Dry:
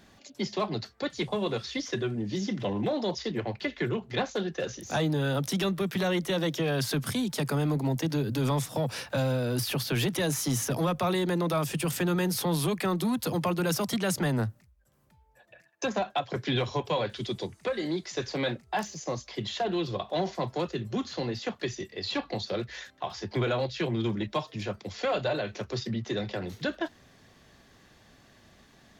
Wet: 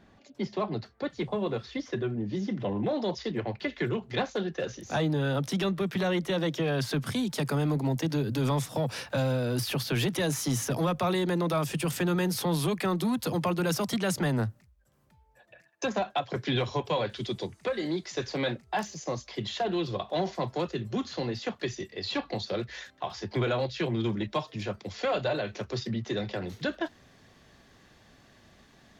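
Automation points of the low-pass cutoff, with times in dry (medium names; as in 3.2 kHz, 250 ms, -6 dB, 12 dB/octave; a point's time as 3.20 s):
low-pass 6 dB/octave
1.6 kHz
from 2.89 s 4 kHz
from 3.69 s 10 kHz
from 4.26 s 4.3 kHz
from 7.13 s 9.3 kHz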